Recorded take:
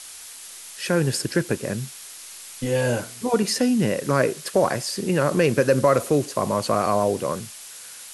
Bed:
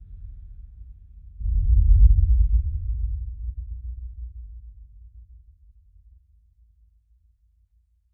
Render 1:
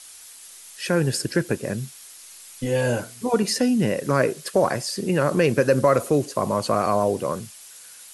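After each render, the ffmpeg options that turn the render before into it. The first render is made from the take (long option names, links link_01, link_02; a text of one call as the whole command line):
ffmpeg -i in.wav -af "afftdn=noise_reduction=6:noise_floor=-41" out.wav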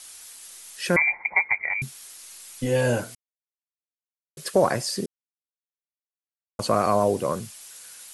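ffmpeg -i in.wav -filter_complex "[0:a]asettb=1/sr,asplit=3[link_01][link_02][link_03];[link_01]atrim=end=0.964[link_04];[link_02]atrim=start=0.96:end=1.82,asetpts=PTS-STARTPTS,afade=type=in:duration=0.004:curve=qsin,afade=type=out:start_time=0.856:duration=0.004:curve=qsin,lowpass=frequency=2100:width_type=q:width=0.5098,lowpass=frequency=2100:width_type=q:width=0.6013,lowpass=frequency=2100:width_type=q:width=0.9,lowpass=frequency=2100:width_type=q:width=2.563,afreqshift=-2500[link_05];[link_03]atrim=start=1.816[link_06];[link_04][link_05]acrossfade=duration=0.004:curve1=hsin:curve2=qsin[link_07];[link_07][link_06]acrossfade=duration=0.004:curve1=qsin:curve2=hsin,asplit=5[link_08][link_09][link_10][link_11][link_12];[link_08]atrim=end=3.15,asetpts=PTS-STARTPTS,afade=type=out:start_time=3.146:duration=0.004:curve=hsin[link_13];[link_09]atrim=start=3.15:end=4.37,asetpts=PTS-STARTPTS,volume=0[link_14];[link_10]atrim=start=4.37:end=5.06,asetpts=PTS-STARTPTS,afade=type=in:duration=0.004:curve=hsin,afade=type=out:start_time=0.686:duration=0.004:curve=hsin[link_15];[link_11]atrim=start=5.06:end=6.59,asetpts=PTS-STARTPTS,volume=0[link_16];[link_12]atrim=start=6.59,asetpts=PTS-STARTPTS,afade=type=in:duration=0.004:curve=hsin[link_17];[link_13][link_14][link_15][link_16][link_17]concat=n=5:v=0:a=1" out.wav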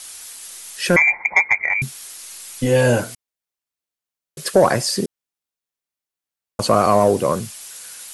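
ffmpeg -i in.wav -af "acontrast=89" out.wav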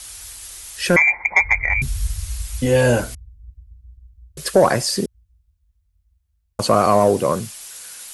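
ffmpeg -i in.wav -i bed.wav -filter_complex "[1:a]volume=-9.5dB[link_01];[0:a][link_01]amix=inputs=2:normalize=0" out.wav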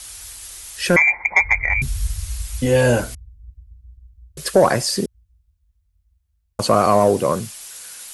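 ffmpeg -i in.wav -af anull out.wav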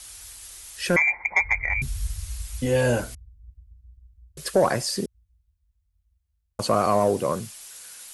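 ffmpeg -i in.wav -af "volume=-6dB" out.wav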